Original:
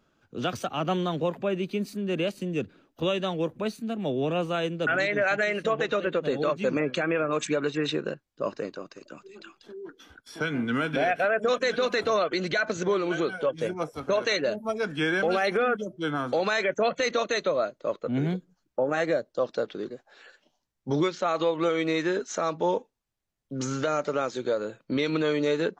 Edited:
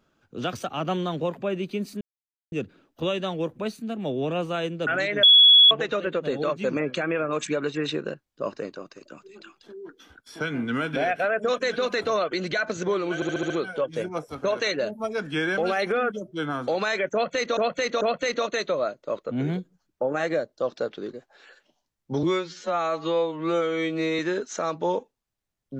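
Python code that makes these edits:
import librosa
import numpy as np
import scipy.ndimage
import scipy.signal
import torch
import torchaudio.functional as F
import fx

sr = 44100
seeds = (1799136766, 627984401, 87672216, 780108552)

y = fx.edit(x, sr, fx.silence(start_s=2.01, length_s=0.51),
    fx.bleep(start_s=5.23, length_s=0.48, hz=3370.0, db=-10.0),
    fx.stutter(start_s=13.15, slice_s=0.07, count=6),
    fx.repeat(start_s=16.78, length_s=0.44, count=3),
    fx.stretch_span(start_s=21.0, length_s=0.98, factor=2.0), tone=tone)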